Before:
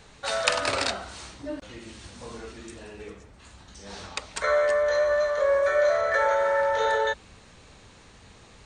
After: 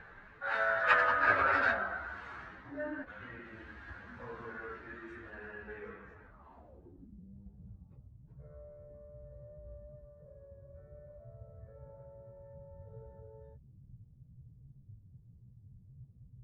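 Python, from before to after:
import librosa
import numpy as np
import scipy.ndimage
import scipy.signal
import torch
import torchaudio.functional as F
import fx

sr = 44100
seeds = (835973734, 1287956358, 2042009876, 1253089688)

y = fx.stretch_vocoder_free(x, sr, factor=1.9)
y = fx.filter_sweep_lowpass(y, sr, from_hz=1600.0, to_hz=130.0, start_s=6.26, end_s=7.35, q=5.0)
y = y * 10.0 ** (-4.5 / 20.0)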